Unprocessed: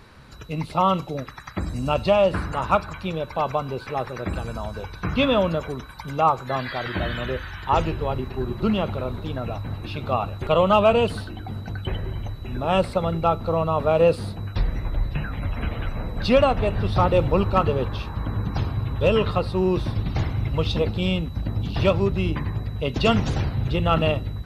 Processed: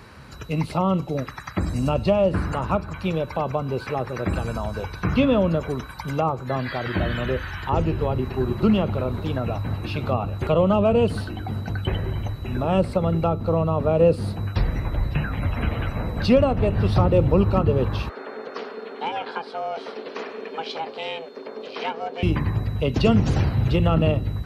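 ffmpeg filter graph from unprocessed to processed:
-filter_complex "[0:a]asettb=1/sr,asplit=3[a][b][c];[a]atrim=end=18.094[d];[b]atrim=start=18.09:end=22.23,asetpts=PTS-STARTPTS,afade=t=in:d=0.004:c=qsin,afade=t=out:st=4.136:d=0.004:c=qsin,aeval=exprs='val(0)*sin(2*PI*330*n/s)':c=same,highpass=720,lowpass=5.3k[e];[c]atrim=start=22.226[f];[d][e]acrossfade=d=0.004:c1=hsin:c2=qsin[g];[g][f]acrossfade=d=0.004:c1=qsin:c2=hsin,highpass=48,equalizer=f=3.6k:w=6.8:g=-5.5,acrossover=split=500[h][i];[i]acompressor=threshold=-33dB:ratio=3[j];[h][j]amix=inputs=2:normalize=0,volume=4dB"

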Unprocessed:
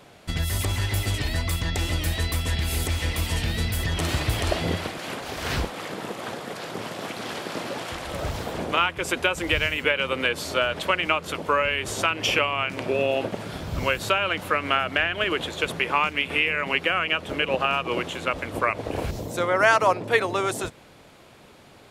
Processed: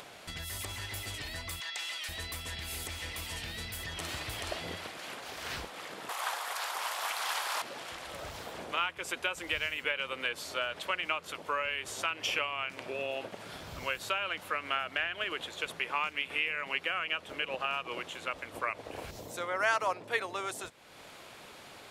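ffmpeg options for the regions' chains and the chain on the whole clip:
-filter_complex "[0:a]asettb=1/sr,asplit=3[a][b][c];[a]atrim=end=1.604[d];[b]atrim=start=1.6:end=2.09,asetpts=PTS-STARTPTS,afade=t=in:d=0.004:c=qsin,afade=t=out:st=0.486:d=0.004:c=qsin,highpass=820,equalizer=f=3k:w=0.62:g=4,acrossover=split=10000[e][f];[f]acompressor=threshold=-49dB:ratio=4:attack=1:release=60[g];[e][g]amix=inputs=2:normalize=0[h];[c]atrim=start=2.086[i];[d][h]acrossfade=d=0.004:c1=hsin:c2=qsin[j];[j][i]acrossfade=d=0.004:c1=qsin:c2=hsin,asettb=1/sr,asplit=3[k][l][m];[k]atrim=end=6.094[n];[l]atrim=start=6.09:end=7.62,asetpts=PTS-STARTPTS,afade=t=in:d=0.004:c=qsin,afade=t=out:st=1.526:d=0.004:c=qsin,highshelf=f=8.3k:g=11.5,acontrast=83,highpass=f=920:t=q:w=2[o];[m]atrim=start=7.616[p];[n][o]acrossfade=d=0.004:c1=hsin:c2=qsin[q];[q][p]acrossfade=d=0.004:c1=qsin:c2=hsin,lowshelf=f=450:g=-11.5,acompressor=mode=upward:threshold=-30dB:ratio=2.5,volume=-8.5dB"

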